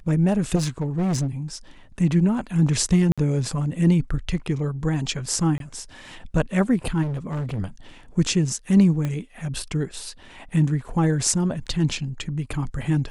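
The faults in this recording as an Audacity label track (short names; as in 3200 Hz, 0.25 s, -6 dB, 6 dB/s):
0.550000	1.270000	clipped -19.5 dBFS
3.120000	3.180000	gap 56 ms
5.580000	5.600000	gap 22 ms
7.020000	7.600000	clipped -24.5 dBFS
9.050000	9.050000	pop -15 dBFS
11.660000	11.670000	gap 7.1 ms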